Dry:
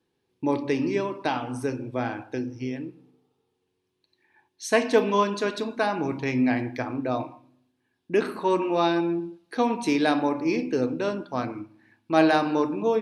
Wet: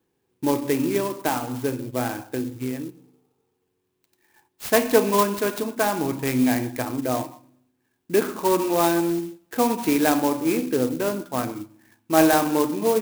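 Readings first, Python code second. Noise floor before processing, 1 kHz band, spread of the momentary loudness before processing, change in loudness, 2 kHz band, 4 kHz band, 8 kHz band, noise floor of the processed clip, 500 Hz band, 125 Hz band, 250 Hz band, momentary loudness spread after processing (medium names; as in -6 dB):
-76 dBFS, +2.0 dB, 11 LU, +2.5 dB, +1.0 dB, +2.5 dB, +12.0 dB, -74 dBFS, +2.5 dB, +2.5 dB, +2.5 dB, 11 LU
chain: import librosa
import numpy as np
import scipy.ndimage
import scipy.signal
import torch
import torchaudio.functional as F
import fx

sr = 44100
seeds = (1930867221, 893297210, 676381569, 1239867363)

y = fx.clock_jitter(x, sr, seeds[0], jitter_ms=0.061)
y = F.gain(torch.from_numpy(y), 2.5).numpy()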